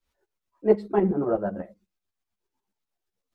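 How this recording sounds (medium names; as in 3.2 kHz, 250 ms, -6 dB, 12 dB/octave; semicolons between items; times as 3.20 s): tremolo saw up 8.1 Hz, depth 75%; a shimmering, thickened sound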